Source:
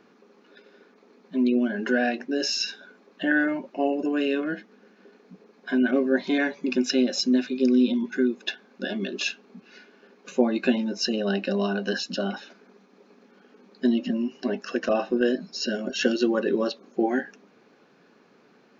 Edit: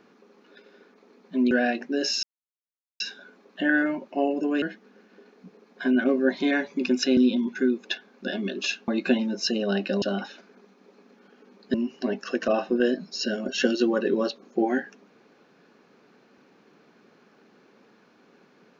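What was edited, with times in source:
0:01.51–0:01.90: remove
0:02.62: splice in silence 0.77 s
0:04.24–0:04.49: remove
0:07.04–0:07.74: remove
0:09.45–0:10.46: remove
0:11.60–0:12.14: remove
0:13.86–0:14.15: remove

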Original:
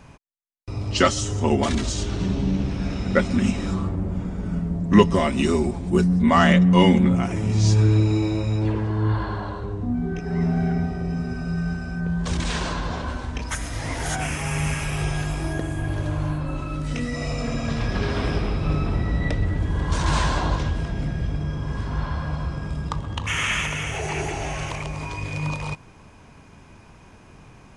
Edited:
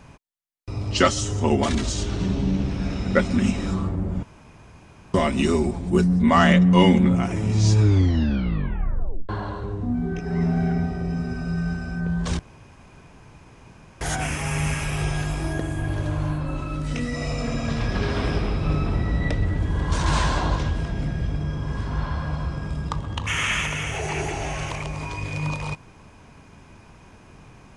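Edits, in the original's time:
0:04.23–0:05.14: fill with room tone
0:07.81: tape stop 1.48 s
0:12.39–0:14.01: fill with room tone

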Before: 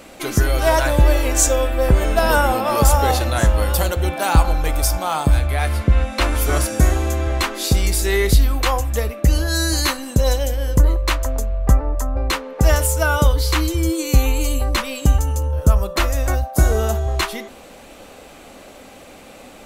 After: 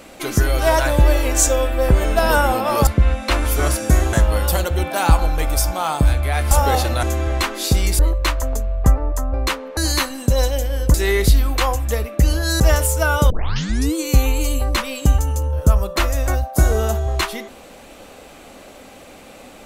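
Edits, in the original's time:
0:02.87–0:03.39: swap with 0:05.77–0:07.03
0:07.99–0:09.65: swap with 0:10.82–0:12.60
0:13.30: tape start 0.65 s

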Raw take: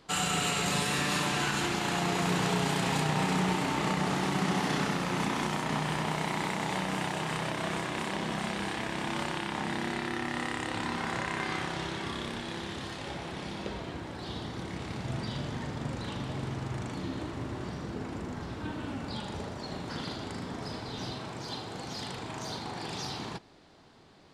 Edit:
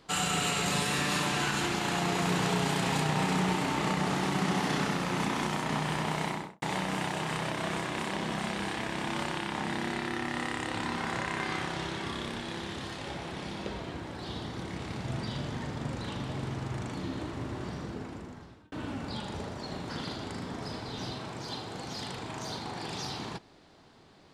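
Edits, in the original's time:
0:06.24–0:06.62: fade out and dull
0:17.80–0:18.72: fade out

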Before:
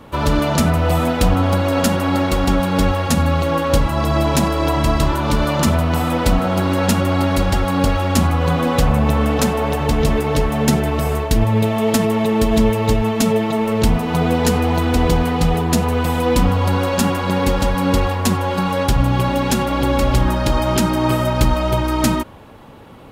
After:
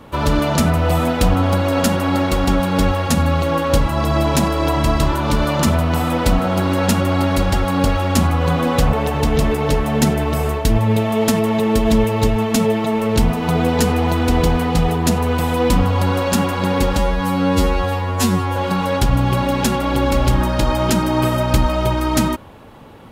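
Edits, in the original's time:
0:08.93–0:09.59: remove
0:17.64–0:18.43: time-stretch 2×

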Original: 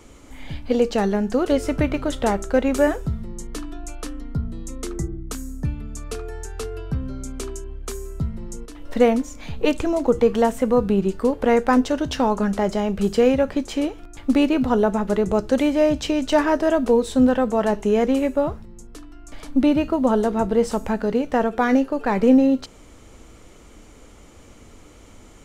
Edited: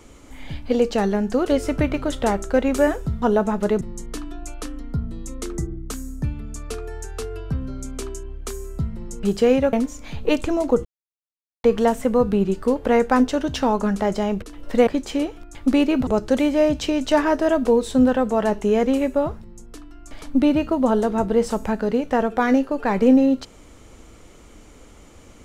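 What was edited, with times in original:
0:08.64–0:09.09: swap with 0:12.99–0:13.49
0:10.21: splice in silence 0.79 s
0:14.69–0:15.28: move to 0:03.22

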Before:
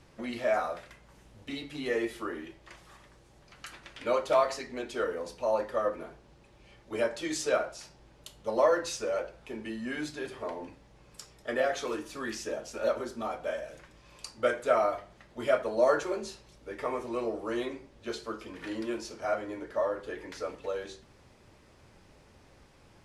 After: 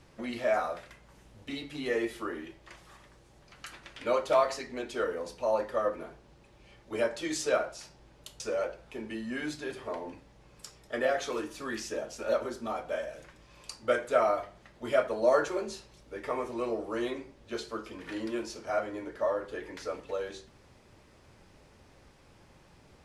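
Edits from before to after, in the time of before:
0:08.40–0:08.95: remove

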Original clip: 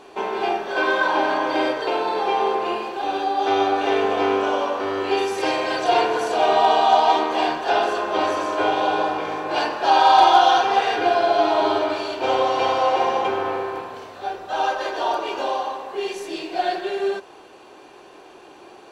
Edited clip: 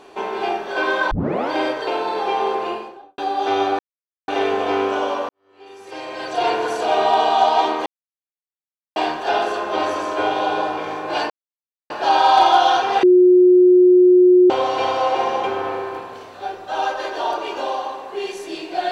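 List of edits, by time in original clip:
0:01.11: tape start 0.39 s
0:02.60–0:03.18: fade out and dull
0:03.79: splice in silence 0.49 s
0:04.80–0:06.07: fade in quadratic
0:07.37: splice in silence 1.10 s
0:09.71: splice in silence 0.60 s
0:10.84–0:12.31: beep over 362 Hz −7.5 dBFS

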